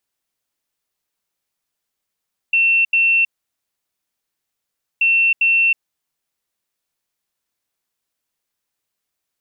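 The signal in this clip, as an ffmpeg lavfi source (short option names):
-f lavfi -i "aevalsrc='0.266*sin(2*PI*2700*t)*clip(min(mod(mod(t,2.48),0.4),0.32-mod(mod(t,2.48),0.4))/0.005,0,1)*lt(mod(t,2.48),0.8)':d=4.96:s=44100"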